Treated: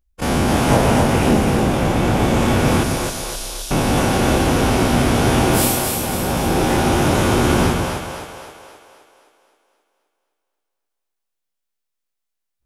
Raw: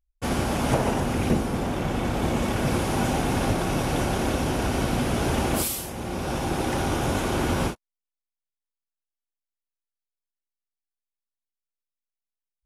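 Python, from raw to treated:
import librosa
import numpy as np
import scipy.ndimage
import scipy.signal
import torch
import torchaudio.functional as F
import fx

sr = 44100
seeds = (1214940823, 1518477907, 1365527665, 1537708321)

y = fx.spec_dilate(x, sr, span_ms=60)
y = fx.cheby2_bandstop(y, sr, low_hz=160.0, high_hz=780.0, order=4, stop_db=80, at=(2.83, 3.71))
y = fx.echo_split(y, sr, split_hz=400.0, low_ms=135, high_ms=262, feedback_pct=52, wet_db=-4)
y = y * 10.0 ** (3.5 / 20.0)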